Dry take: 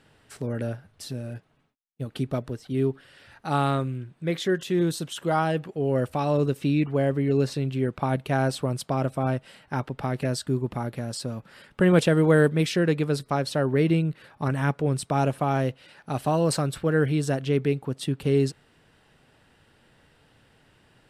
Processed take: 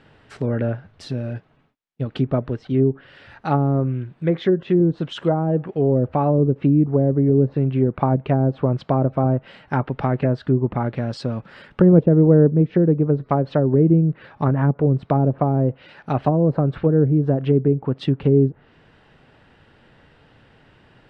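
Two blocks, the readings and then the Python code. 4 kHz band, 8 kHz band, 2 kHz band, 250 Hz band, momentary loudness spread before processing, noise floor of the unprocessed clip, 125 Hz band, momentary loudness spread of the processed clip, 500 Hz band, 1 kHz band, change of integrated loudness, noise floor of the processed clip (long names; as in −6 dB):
can't be measured, below −15 dB, −5.5 dB, +7.0 dB, 11 LU, −62 dBFS, +7.5 dB, 11 LU, +5.0 dB, +2.5 dB, +6.0 dB, −55 dBFS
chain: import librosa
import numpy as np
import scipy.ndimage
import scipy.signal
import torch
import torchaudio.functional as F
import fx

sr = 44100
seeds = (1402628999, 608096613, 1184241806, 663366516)

y = scipy.signal.sosfilt(scipy.signal.bessel(2, 3000.0, 'lowpass', norm='mag', fs=sr, output='sos'), x)
y = fx.env_lowpass_down(y, sr, base_hz=450.0, full_db=-19.5)
y = y * librosa.db_to_amplitude(7.5)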